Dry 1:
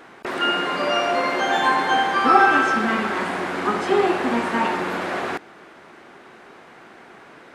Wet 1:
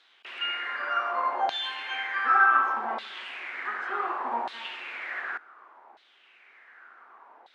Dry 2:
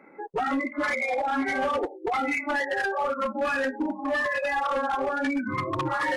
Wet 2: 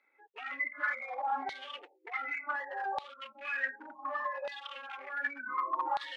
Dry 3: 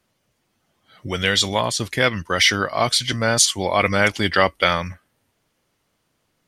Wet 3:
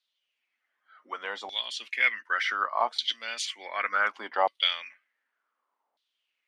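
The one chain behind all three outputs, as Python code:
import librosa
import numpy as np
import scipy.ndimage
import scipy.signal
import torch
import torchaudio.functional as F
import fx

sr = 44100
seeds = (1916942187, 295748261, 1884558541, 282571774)

y = scipy.signal.sosfilt(scipy.signal.ellip(4, 1.0, 40, 220.0, 'highpass', fs=sr, output='sos'), x)
y = fx.filter_lfo_bandpass(y, sr, shape='saw_down', hz=0.67, low_hz=780.0, high_hz=3900.0, q=4.8)
y = y * 10.0 ** (2.0 / 20.0)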